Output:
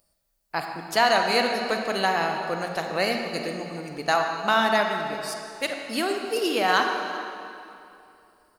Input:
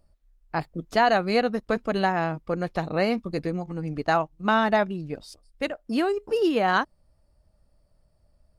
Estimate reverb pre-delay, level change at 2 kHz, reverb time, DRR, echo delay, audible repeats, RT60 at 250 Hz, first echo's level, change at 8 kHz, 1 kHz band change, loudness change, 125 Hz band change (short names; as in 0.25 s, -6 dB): 32 ms, +3.5 dB, 2.7 s, 3.0 dB, 0.391 s, 1, 2.8 s, -19.0 dB, n/a, +1.5 dB, +0.5 dB, -7.0 dB